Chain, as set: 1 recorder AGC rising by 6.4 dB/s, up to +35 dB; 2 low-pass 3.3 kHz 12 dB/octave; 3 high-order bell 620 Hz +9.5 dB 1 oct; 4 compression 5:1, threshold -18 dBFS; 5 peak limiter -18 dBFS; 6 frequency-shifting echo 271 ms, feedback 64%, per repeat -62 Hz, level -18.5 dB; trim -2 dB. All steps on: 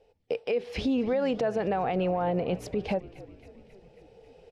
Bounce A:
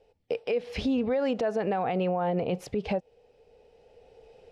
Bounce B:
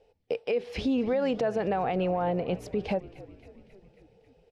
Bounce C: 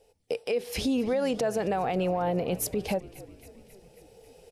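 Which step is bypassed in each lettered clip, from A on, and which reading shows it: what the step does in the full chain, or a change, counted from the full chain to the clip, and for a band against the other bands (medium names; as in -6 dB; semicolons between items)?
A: 6, echo-to-direct -16.0 dB to none; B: 1, momentary loudness spread change -1 LU; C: 2, 4 kHz band +3.5 dB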